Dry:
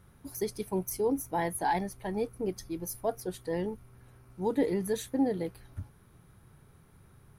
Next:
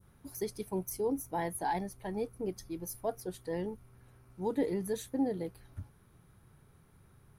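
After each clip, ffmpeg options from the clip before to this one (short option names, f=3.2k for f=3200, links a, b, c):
-af "adynamicequalizer=threshold=0.00355:dfrequency=2200:dqfactor=0.7:tfrequency=2200:tqfactor=0.7:attack=5:release=100:ratio=0.375:range=2:mode=cutabove:tftype=bell,volume=-3.5dB"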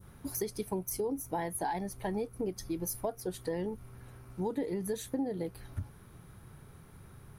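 -af "acompressor=threshold=-40dB:ratio=6,volume=8.5dB"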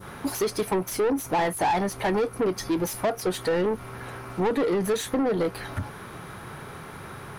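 -filter_complex "[0:a]asplit=2[a][b];[b]highpass=f=720:p=1,volume=24dB,asoftclip=type=tanh:threshold=-21.5dB[c];[a][c]amix=inputs=2:normalize=0,lowpass=f=2.5k:p=1,volume=-6dB,volume=5.5dB"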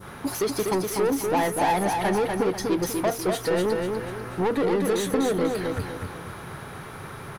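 -af "aecho=1:1:246|492|738|984|1230:0.631|0.24|0.0911|0.0346|0.0132"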